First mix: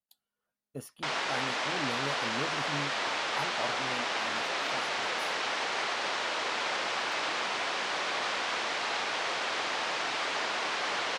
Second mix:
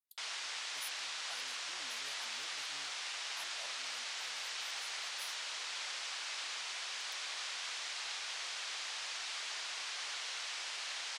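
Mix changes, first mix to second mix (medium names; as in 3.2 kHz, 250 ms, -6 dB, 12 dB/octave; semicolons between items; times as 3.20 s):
background: entry -0.85 s; master: add differentiator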